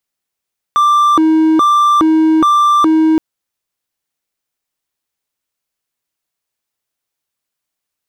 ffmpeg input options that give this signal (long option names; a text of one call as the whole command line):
ffmpeg -f lavfi -i "aevalsrc='0.562*(1-4*abs(mod((748.5*t+431.5/1.2*(0.5-abs(mod(1.2*t,1)-0.5)))+0.25,1)-0.5))':duration=2.42:sample_rate=44100" out.wav